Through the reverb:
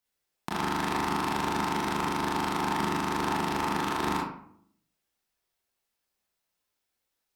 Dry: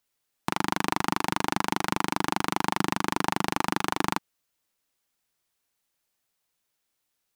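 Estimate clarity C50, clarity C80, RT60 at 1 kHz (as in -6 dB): 2.0 dB, 7.0 dB, 0.60 s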